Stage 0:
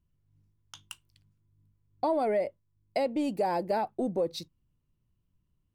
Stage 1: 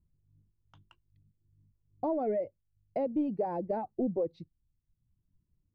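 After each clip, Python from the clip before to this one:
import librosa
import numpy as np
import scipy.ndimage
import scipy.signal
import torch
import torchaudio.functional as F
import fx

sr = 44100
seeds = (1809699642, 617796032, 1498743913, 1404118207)

y = scipy.signal.sosfilt(scipy.signal.butter(2, 2600.0, 'lowpass', fs=sr, output='sos'), x)
y = fx.dereverb_blind(y, sr, rt60_s=0.84)
y = fx.tilt_shelf(y, sr, db=10.0, hz=970.0)
y = y * librosa.db_to_amplitude(-7.5)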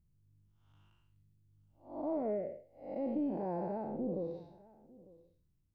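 y = fx.spec_blur(x, sr, span_ms=242.0)
y = y + 10.0 ** (-22.0 / 20.0) * np.pad(y, (int(900 * sr / 1000.0), 0))[:len(y)]
y = y * librosa.db_to_amplitude(1.5)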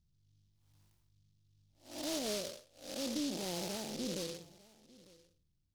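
y = fx.noise_mod_delay(x, sr, seeds[0], noise_hz=4400.0, depth_ms=0.21)
y = y * librosa.db_to_amplitude(-2.5)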